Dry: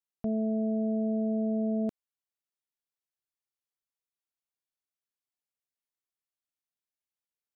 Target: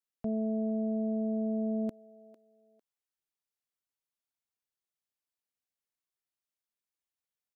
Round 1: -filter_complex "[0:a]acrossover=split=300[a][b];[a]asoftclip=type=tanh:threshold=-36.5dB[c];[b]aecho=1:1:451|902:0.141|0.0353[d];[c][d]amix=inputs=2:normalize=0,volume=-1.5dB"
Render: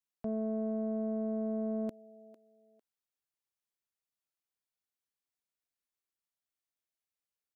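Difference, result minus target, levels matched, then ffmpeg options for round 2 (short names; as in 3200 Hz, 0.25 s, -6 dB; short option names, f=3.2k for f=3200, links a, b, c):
soft clip: distortion +13 dB
-filter_complex "[0:a]acrossover=split=300[a][b];[a]asoftclip=type=tanh:threshold=-27dB[c];[b]aecho=1:1:451|902:0.141|0.0353[d];[c][d]amix=inputs=2:normalize=0,volume=-1.5dB"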